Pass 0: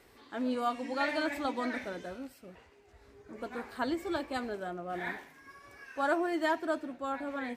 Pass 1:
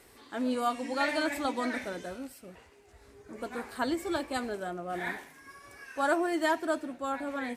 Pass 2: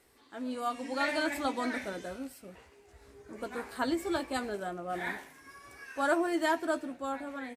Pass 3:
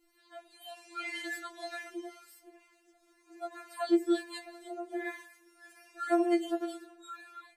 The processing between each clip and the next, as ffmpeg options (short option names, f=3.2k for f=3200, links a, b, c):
-af "equalizer=f=9.7k:t=o:w=1.1:g=9,volume=2dB"
-filter_complex "[0:a]dynaudnorm=f=210:g=7:m=7.5dB,asplit=2[a][b];[b]adelay=15,volume=-11dB[c];[a][c]amix=inputs=2:normalize=0,volume=-8.5dB"
-filter_complex "[0:a]acrossover=split=760[a][b];[a]aeval=exprs='val(0)*(1-0.5/2+0.5/2*cos(2*PI*2*n/s))':c=same[c];[b]aeval=exprs='val(0)*(1-0.5/2-0.5/2*cos(2*PI*2*n/s))':c=same[d];[c][d]amix=inputs=2:normalize=0,afftfilt=real='re*4*eq(mod(b,16),0)':imag='im*4*eq(mod(b,16),0)':win_size=2048:overlap=0.75"